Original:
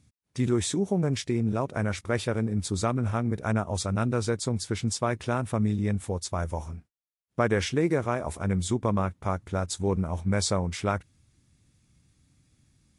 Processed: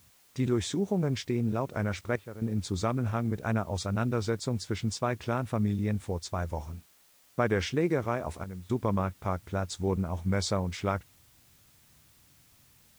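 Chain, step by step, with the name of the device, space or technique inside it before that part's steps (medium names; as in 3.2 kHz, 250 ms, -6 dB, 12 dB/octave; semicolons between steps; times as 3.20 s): worn cassette (low-pass 6.4 kHz 12 dB/octave; wow and flutter; level dips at 2.16/8.44 s, 253 ms -12 dB; white noise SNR 31 dB); trim -2.5 dB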